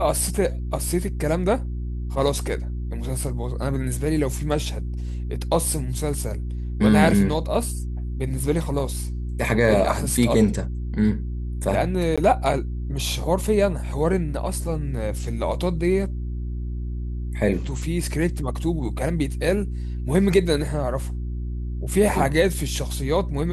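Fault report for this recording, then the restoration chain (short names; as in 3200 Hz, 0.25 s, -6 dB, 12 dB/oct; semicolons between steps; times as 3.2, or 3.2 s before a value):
hum 60 Hz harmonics 6 -28 dBFS
12.16–12.18 gap 16 ms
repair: de-hum 60 Hz, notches 6; interpolate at 12.16, 16 ms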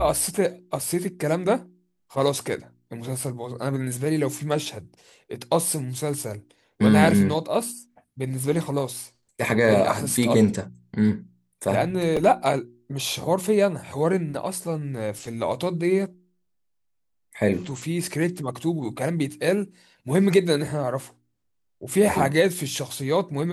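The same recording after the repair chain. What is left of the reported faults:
none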